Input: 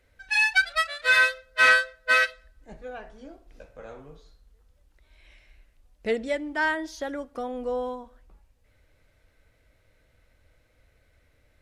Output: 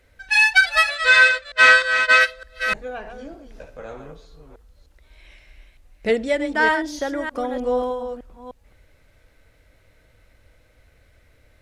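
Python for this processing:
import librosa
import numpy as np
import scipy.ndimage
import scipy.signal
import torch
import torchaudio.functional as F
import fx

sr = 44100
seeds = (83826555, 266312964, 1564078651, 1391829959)

y = fx.reverse_delay(x, sr, ms=304, wet_db=-8.0)
y = fx.cheby1_lowpass(y, sr, hz=8300.0, order=4, at=(0.95, 2.21))
y = y * 10.0 ** (6.5 / 20.0)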